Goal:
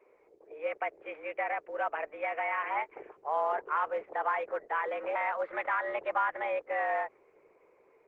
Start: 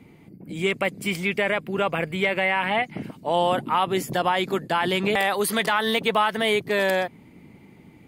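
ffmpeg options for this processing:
-af "highpass=f=290:t=q:w=0.5412,highpass=f=290:t=q:w=1.307,lowpass=f=2k:t=q:w=0.5176,lowpass=f=2k:t=q:w=0.7071,lowpass=f=2k:t=q:w=1.932,afreqshift=140,volume=-8dB" -ar 48000 -c:a libopus -b:a 12k

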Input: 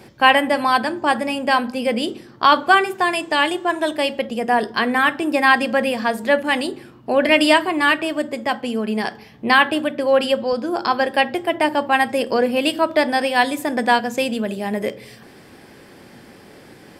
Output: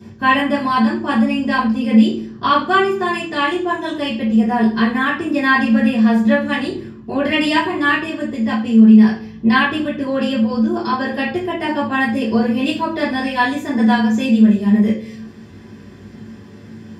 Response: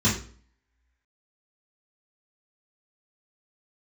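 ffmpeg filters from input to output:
-filter_complex "[1:a]atrim=start_sample=2205[a];[0:a][a]afir=irnorm=-1:irlink=0,volume=-15.5dB"

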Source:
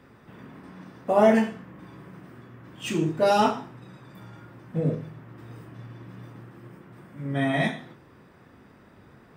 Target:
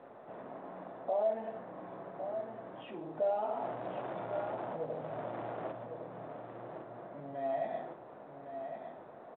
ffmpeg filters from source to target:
-filter_complex "[0:a]asettb=1/sr,asplit=3[a][b][c];[a]atrim=end=3.494[d];[b]atrim=start=3.49:end=5.72,asetpts=PTS-STARTPTS,afade=t=in:d=0.004:c=qsin,afade=t=out:st=2.226:d=0.004:c=qsin,aeval=exprs='val(0)+0.5*0.015*sgn(val(0))':c=same[e];[c]atrim=start=5.716[f];[d][e]acrossfade=d=0.004:c1=hsin:c2=qsin[g];[g][f]acrossfade=d=0.004:c1=qsin:c2=hsin,acompressor=threshold=-28dB:ratio=6,alimiter=level_in=7.5dB:limit=-24dB:level=0:latency=1:release=82,volume=-7.5dB,asoftclip=type=tanh:threshold=-33.5dB,tremolo=f=120:d=0.333,bandpass=f=660:t=q:w=4:csg=0,aecho=1:1:1108|2216|3324:0.398|0.0717|0.0129,volume=14.5dB" -ar 8000 -c:a pcm_mulaw

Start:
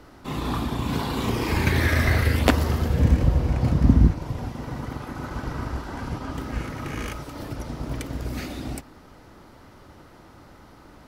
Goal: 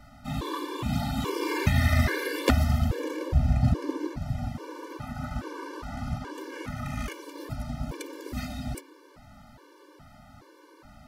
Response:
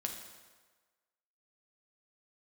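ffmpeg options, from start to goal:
-af "bandreject=f=91.6:t=h:w=4,bandreject=f=183.2:t=h:w=4,bandreject=f=274.8:t=h:w=4,bandreject=f=366.4:t=h:w=4,bandreject=f=458:t=h:w=4,bandreject=f=549.6:t=h:w=4,bandreject=f=641.2:t=h:w=4,bandreject=f=732.8:t=h:w=4,bandreject=f=824.4:t=h:w=4,bandreject=f=916:t=h:w=4,bandreject=f=1.0076k:t=h:w=4,bandreject=f=1.0992k:t=h:w=4,bandreject=f=1.1908k:t=h:w=4,bandreject=f=1.2824k:t=h:w=4,bandreject=f=1.374k:t=h:w=4,bandreject=f=1.4656k:t=h:w=4,bandreject=f=1.5572k:t=h:w=4,bandreject=f=1.6488k:t=h:w=4,bandreject=f=1.7404k:t=h:w=4,bandreject=f=1.832k:t=h:w=4,bandreject=f=1.9236k:t=h:w=4,bandreject=f=2.0152k:t=h:w=4,bandreject=f=2.1068k:t=h:w=4,bandreject=f=2.1984k:t=h:w=4,bandreject=f=2.29k:t=h:w=4,bandreject=f=2.3816k:t=h:w=4,bandreject=f=2.4732k:t=h:w=4,bandreject=f=2.5648k:t=h:w=4,bandreject=f=2.6564k:t=h:w=4,bandreject=f=2.748k:t=h:w=4,bandreject=f=2.8396k:t=h:w=4,bandreject=f=2.9312k:t=h:w=4,bandreject=f=3.0228k:t=h:w=4,bandreject=f=3.1144k:t=h:w=4,bandreject=f=3.206k:t=h:w=4,bandreject=f=3.2976k:t=h:w=4,afftfilt=real='re*gt(sin(2*PI*1.2*pts/sr)*(1-2*mod(floor(b*sr/1024/300),2)),0)':imag='im*gt(sin(2*PI*1.2*pts/sr)*(1-2*mod(floor(b*sr/1024/300),2)),0)':win_size=1024:overlap=0.75"

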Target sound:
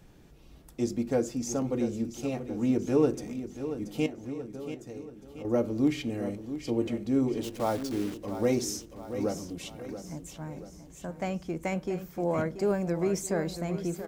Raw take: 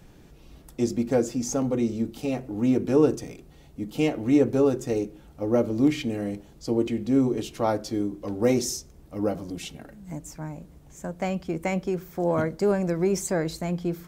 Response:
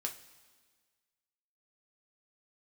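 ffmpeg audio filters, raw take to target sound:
-filter_complex "[0:a]asettb=1/sr,asplit=3[a][b][c];[a]atrim=end=4.064[d];[b]atrim=start=4.06:end=5.45,asetpts=PTS-STARTPTS,afade=t=in:d=0.004:c=qsin,afade=t=out:st=1.386:d=0.004:c=qsin,acompressor=threshold=-41dB:ratio=2.5[e];[c]atrim=start=5.446[f];[d][e]acrossfade=d=0.004:c1=hsin:c2=qsin[g];[g][f]acrossfade=d=0.004:c1=qsin:c2=hsin,asplit=3[h][i][j];[h]afade=t=out:st=7.42:d=0.02[k];[i]acrusher=bits=7:dc=4:mix=0:aa=0.000001,afade=t=in:st=7.42:d=0.02,afade=t=out:st=8.14:d=0.02[l];[j]afade=t=in:st=8.14:d=0.02[m];[k][l][m]amix=inputs=3:normalize=0,aecho=1:1:681|1362|2043|2724|3405:0.282|0.138|0.0677|0.0332|0.0162,volume=-4.5dB"

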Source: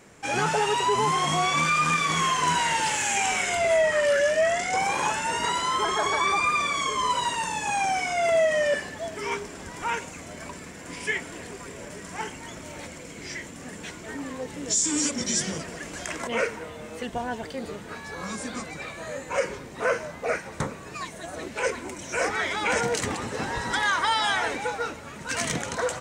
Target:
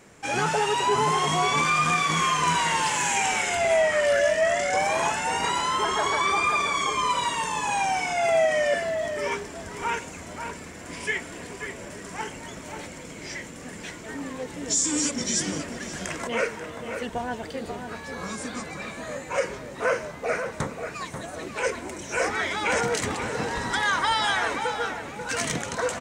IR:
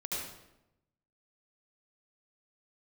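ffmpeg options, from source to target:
-filter_complex "[0:a]asplit=2[a][b];[b]adelay=536.4,volume=-7dB,highshelf=f=4k:g=-12.1[c];[a][c]amix=inputs=2:normalize=0"

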